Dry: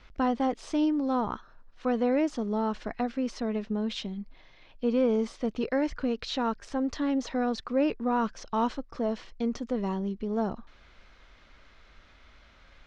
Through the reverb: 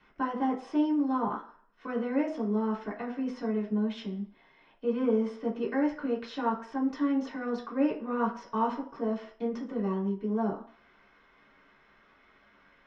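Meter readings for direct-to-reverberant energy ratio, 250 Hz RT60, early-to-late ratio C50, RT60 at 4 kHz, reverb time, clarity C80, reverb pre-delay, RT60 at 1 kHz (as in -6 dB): -4.0 dB, 0.35 s, 10.0 dB, 0.45 s, 0.50 s, 14.0 dB, 3 ms, 0.55 s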